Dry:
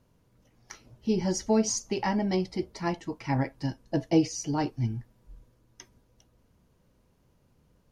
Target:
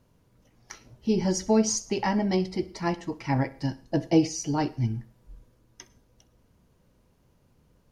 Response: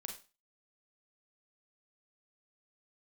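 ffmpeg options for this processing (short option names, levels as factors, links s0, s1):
-filter_complex "[0:a]asplit=2[s0][s1];[1:a]atrim=start_sample=2205,adelay=64[s2];[s1][s2]afir=irnorm=-1:irlink=0,volume=0.168[s3];[s0][s3]amix=inputs=2:normalize=0,volume=1.26"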